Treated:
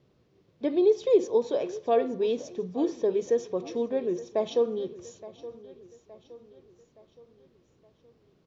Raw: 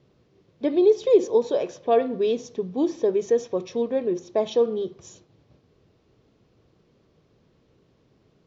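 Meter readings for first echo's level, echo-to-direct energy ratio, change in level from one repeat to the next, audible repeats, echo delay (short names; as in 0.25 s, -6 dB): -17.0 dB, -16.0 dB, -6.5 dB, 3, 0.869 s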